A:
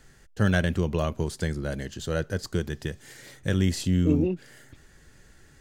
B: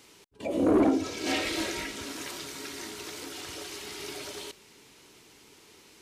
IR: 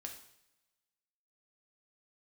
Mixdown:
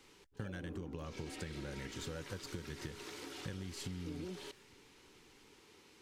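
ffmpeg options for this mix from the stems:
-filter_complex "[0:a]agate=range=-13dB:threshold=-43dB:ratio=16:detection=peak,acompressor=threshold=-28dB:ratio=2.5,volume=-6.5dB[a];[1:a]acrossover=split=380[b][c];[c]acompressor=threshold=-29dB:ratio=6[d];[b][d]amix=inputs=2:normalize=0,highshelf=f=6.1k:g=-9,acompressor=threshold=-36dB:ratio=5,volume=-5.5dB[e];[a][e]amix=inputs=2:normalize=0,asuperstop=centerf=650:order=4:qfactor=6.5,acompressor=threshold=-40dB:ratio=6"

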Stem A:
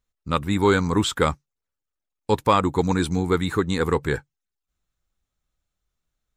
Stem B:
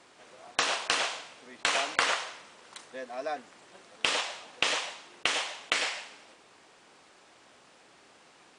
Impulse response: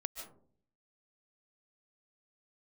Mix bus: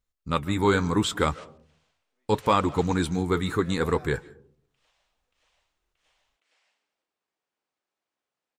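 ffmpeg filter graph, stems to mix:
-filter_complex "[0:a]volume=0dB,asplit=3[a][b][c];[b]volume=-12dB[d];[1:a]acompressor=threshold=-30dB:ratio=6,alimiter=level_in=4dB:limit=-24dB:level=0:latency=1:release=205,volume=-4dB,adelay=700,volume=-5.5dB[e];[c]apad=whole_len=409262[f];[e][f]sidechaingate=range=-21dB:threshold=-37dB:ratio=16:detection=peak[g];[2:a]atrim=start_sample=2205[h];[d][h]afir=irnorm=-1:irlink=0[i];[a][g][i]amix=inputs=3:normalize=0,flanger=delay=1.3:depth=7.8:regen=-72:speed=0.72:shape=triangular"

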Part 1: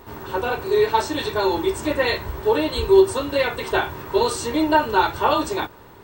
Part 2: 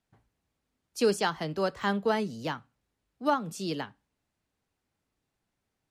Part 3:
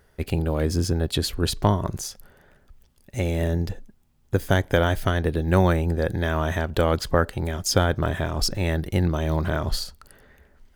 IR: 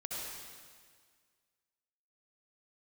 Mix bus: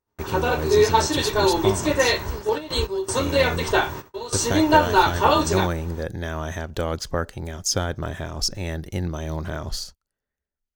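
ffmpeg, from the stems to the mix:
-filter_complex "[0:a]volume=1dB[a];[1:a]adelay=1300,volume=-15.5dB[b];[2:a]volume=-5dB,asplit=2[c][d];[d]apad=whole_len=265983[e];[a][e]sidechaingate=range=-15dB:threshold=-58dB:ratio=16:detection=peak[f];[f][b][c]amix=inputs=3:normalize=0,agate=range=-29dB:threshold=-41dB:ratio=16:detection=peak,equalizer=f=6.1k:w=2.1:g=9.5"

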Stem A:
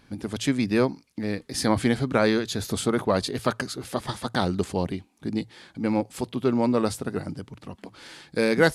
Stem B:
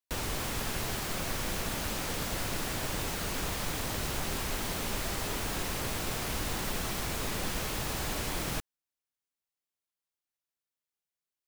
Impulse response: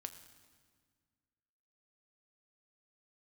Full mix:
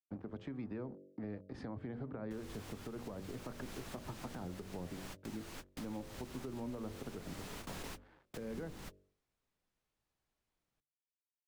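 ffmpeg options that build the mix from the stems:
-filter_complex "[0:a]aeval=exprs='sgn(val(0))*max(abs(val(0))-0.00631,0)':c=same,alimiter=limit=-14dB:level=0:latency=1:release=50,lowpass=1.2k,volume=-5.5dB,asplit=2[a][b];[1:a]highshelf=f=11k:g=-6.5,adelay=2200,volume=-10.5dB[c];[b]apad=whole_len=603242[d];[c][d]sidechaingate=range=-43dB:threshold=-57dB:ratio=16:detection=peak[e];[a][e]amix=inputs=2:normalize=0,bandreject=f=47.86:t=h:w=4,bandreject=f=95.72:t=h:w=4,bandreject=f=143.58:t=h:w=4,bandreject=f=191.44:t=h:w=4,bandreject=f=239.3:t=h:w=4,bandreject=f=287.16:t=h:w=4,bandreject=f=335.02:t=h:w=4,bandreject=f=382.88:t=h:w=4,bandreject=f=430.74:t=h:w=4,bandreject=f=478.6:t=h:w=4,bandreject=f=526.46:t=h:w=4,bandreject=f=574.32:t=h:w=4,bandreject=f=622.18:t=h:w=4,acrossover=split=130|350[f][g][h];[f]acompressor=threshold=-45dB:ratio=4[i];[g]acompressor=threshold=-41dB:ratio=4[j];[h]acompressor=threshold=-43dB:ratio=4[k];[i][j][k]amix=inputs=3:normalize=0,alimiter=level_in=9.5dB:limit=-24dB:level=0:latency=1:release=357,volume=-9.5dB"

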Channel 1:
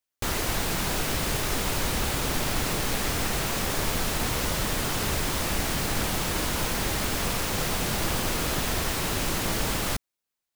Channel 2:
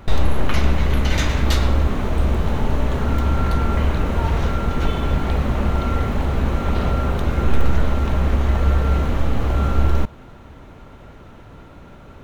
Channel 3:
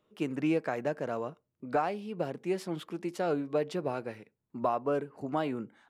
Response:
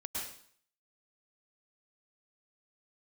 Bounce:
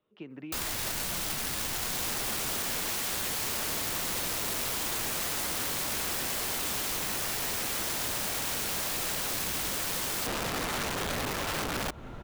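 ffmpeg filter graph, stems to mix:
-filter_complex "[0:a]equalizer=f=450:t=o:w=0.56:g=-11.5,adelay=300,volume=-4dB[a];[1:a]acompressor=threshold=-19dB:ratio=5,adelay=1850,volume=-1dB[b];[2:a]lowpass=f=3.6k:w=0.5412,lowpass=f=3.6k:w=1.3066,acompressor=threshold=-33dB:ratio=5,crystalizer=i=1.5:c=0,volume=-6.5dB[c];[a][b][c]amix=inputs=3:normalize=0,acrossover=split=290|3000[d][e][f];[e]acompressor=threshold=-33dB:ratio=4[g];[d][g][f]amix=inputs=3:normalize=0,aeval=exprs='(mod(23.7*val(0)+1,2)-1)/23.7':c=same"

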